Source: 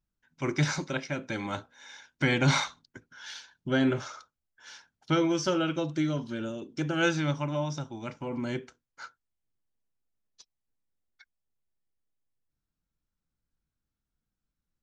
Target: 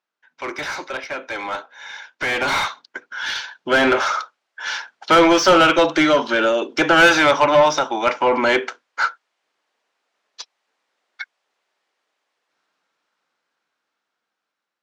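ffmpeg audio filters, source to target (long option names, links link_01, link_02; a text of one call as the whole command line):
ffmpeg -i in.wav -filter_complex "[0:a]highpass=480,lowpass=6400,asplit=2[link_01][link_02];[link_02]highpass=frequency=720:poles=1,volume=23dB,asoftclip=type=tanh:threshold=-14.5dB[link_03];[link_01][link_03]amix=inputs=2:normalize=0,lowpass=frequency=1900:poles=1,volume=-6dB,dynaudnorm=framelen=970:gausssize=7:maxgain=16dB,volume=-1.5dB" out.wav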